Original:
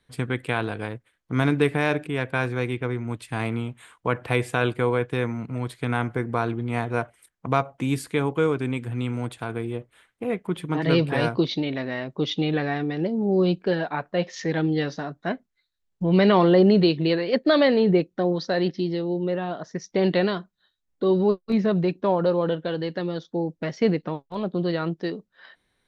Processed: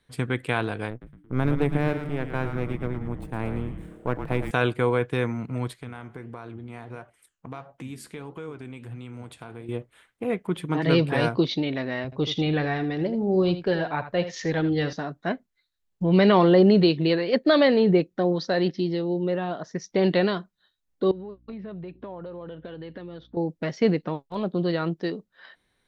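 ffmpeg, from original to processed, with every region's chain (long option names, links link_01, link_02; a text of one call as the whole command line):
ffmpeg -i in.wav -filter_complex "[0:a]asettb=1/sr,asplit=3[link_01][link_02][link_03];[link_01]atrim=end=0.904[link_04];[link_02]atrim=start=0.9:end=4.51,asetpts=PTS-STARTPTS,afade=type=in:duration=0.004:curve=qsin,afade=type=out:start_time=3.606:duration=0.004:curve=qsin,aeval=exprs='if(lt(val(0),0),0.251*val(0),val(0))':channel_layout=same,equalizer=frequency=5200:width_type=o:width=3:gain=-13,asplit=7[link_05][link_06][link_07][link_08][link_09][link_10][link_11];[link_06]adelay=112,afreqshift=-150,volume=-7dB[link_12];[link_07]adelay=224,afreqshift=-300,volume=-13.2dB[link_13];[link_08]adelay=336,afreqshift=-450,volume=-19.4dB[link_14];[link_09]adelay=448,afreqshift=-600,volume=-25.6dB[link_15];[link_10]adelay=560,afreqshift=-750,volume=-31.8dB[link_16];[link_11]adelay=672,afreqshift=-900,volume=-38dB[link_17];[link_05][link_12][link_13][link_14][link_15][link_16][link_17]amix=inputs=7:normalize=0,atrim=end_sample=159201[link_18];[link_03]atrim=start=4.506[link_19];[link_04][link_18]acrossfade=duration=0.004:curve1=hsin:curve2=qsin[link_20];[link_20][link_19]acrossfade=duration=0.004:curve1=qsin:curve2=hsin,asettb=1/sr,asplit=3[link_21][link_22][link_23];[link_21]atrim=end=5.734[link_24];[link_22]atrim=start=5.73:end=9.69,asetpts=PTS-STARTPTS,afade=type=in:duration=0.004:curve=qsin,afade=type=out:start_time=3.956:duration=0.004:curve=qsin,acompressor=threshold=-32dB:ratio=3:attack=3.2:release=140:knee=1:detection=peak,flanger=delay=5.1:depth=8.8:regen=79:speed=1.5:shape=sinusoidal[link_25];[link_23]atrim=start=9.686[link_26];[link_24][link_25]acrossfade=duration=0.004:curve1=hsin:curve2=qsin[link_27];[link_27][link_26]acrossfade=duration=0.004:curve1=qsin:curve2=hsin,asettb=1/sr,asplit=3[link_28][link_29][link_30];[link_28]atrim=end=12.044[link_31];[link_29]atrim=start=12.04:end=14.93,asetpts=PTS-STARTPTS,afade=type=in:duration=0.004:curve=qsin,afade=type=out:start_time=2.886:duration=0.004:curve=qsin,lowshelf=frequency=130:width_type=q:width=1.5:gain=8.5,aecho=1:1:79:0.237,atrim=end_sample=127449[link_32];[link_30]atrim=start=14.926[link_33];[link_31][link_32]acrossfade=duration=0.004:curve1=hsin:curve2=qsin[link_34];[link_34][link_33]acrossfade=duration=0.004:curve1=qsin:curve2=hsin,asettb=1/sr,asplit=3[link_35][link_36][link_37];[link_35]atrim=end=21.114[link_38];[link_36]atrim=start=21.11:end=23.37,asetpts=PTS-STARTPTS,afade=type=in:duration=0.004:curve=qsin,afade=type=out:start_time=2.256:duration=0.004:curve=qsin,lowpass=frequency=3700:width=0.5412,lowpass=frequency=3700:width=1.3066,acompressor=threshold=-34dB:ratio=12:attack=3.2:release=140:knee=1:detection=peak,aeval=exprs='val(0)+0.00126*(sin(2*PI*60*n/s)+sin(2*PI*2*60*n/s)/2+sin(2*PI*3*60*n/s)/3+sin(2*PI*4*60*n/s)/4+sin(2*PI*5*60*n/s)/5)':channel_layout=same[link_39];[link_37]atrim=start=23.366[link_40];[link_38][link_39]acrossfade=duration=0.004:curve1=hsin:curve2=qsin[link_41];[link_41][link_40]acrossfade=duration=0.004:curve1=qsin:curve2=hsin" out.wav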